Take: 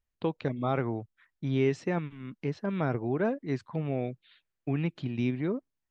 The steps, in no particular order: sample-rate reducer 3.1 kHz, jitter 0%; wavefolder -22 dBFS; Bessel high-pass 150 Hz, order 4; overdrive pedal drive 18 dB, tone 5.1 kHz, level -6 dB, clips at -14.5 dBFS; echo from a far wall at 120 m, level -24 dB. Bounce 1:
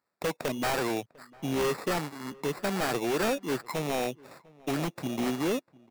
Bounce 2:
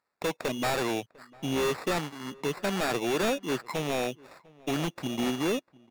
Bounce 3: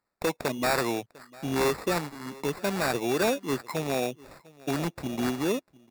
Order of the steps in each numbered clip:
overdrive pedal > sample-rate reducer > Bessel high-pass > wavefolder > echo from a far wall; Bessel high-pass > sample-rate reducer > overdrive pedal > wavefolder > echo from a far wall; wavefolder > echo from a far wall > overdrive pedal > Bessel high-pass > sample-rate reducer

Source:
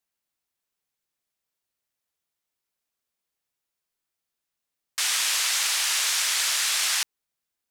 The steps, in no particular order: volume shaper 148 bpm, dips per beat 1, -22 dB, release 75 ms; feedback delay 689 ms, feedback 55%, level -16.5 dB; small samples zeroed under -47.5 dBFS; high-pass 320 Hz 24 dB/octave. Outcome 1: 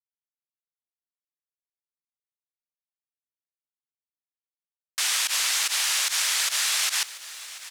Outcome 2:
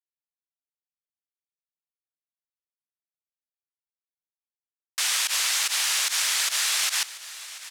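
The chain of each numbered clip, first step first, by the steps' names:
volume shaper > feedback delay > small samples zeroed > high-pass; high-pass > small samples zeroed > volume shaper > feedback delay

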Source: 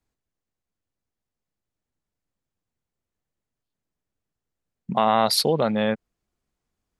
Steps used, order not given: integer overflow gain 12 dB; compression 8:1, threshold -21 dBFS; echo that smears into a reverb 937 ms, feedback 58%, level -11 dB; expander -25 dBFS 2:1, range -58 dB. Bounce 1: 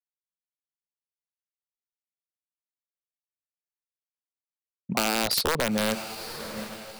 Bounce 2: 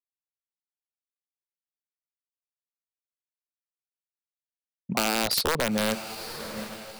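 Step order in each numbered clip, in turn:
integer overflow > echo that smears into a reverb > expander > compression; integer overflow > echo that smears into a reverb > compression > expander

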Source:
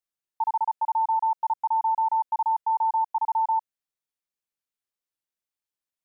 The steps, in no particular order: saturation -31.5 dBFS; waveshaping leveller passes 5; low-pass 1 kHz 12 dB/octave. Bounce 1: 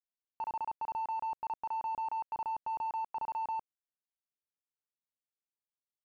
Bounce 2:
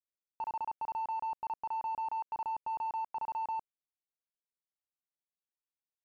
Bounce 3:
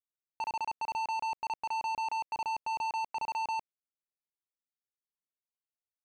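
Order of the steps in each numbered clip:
waveshaping leveller > saturation > low-pass; saturation > waveshaping leveller > low-pass; waveshaping leveller > low-pass > saturation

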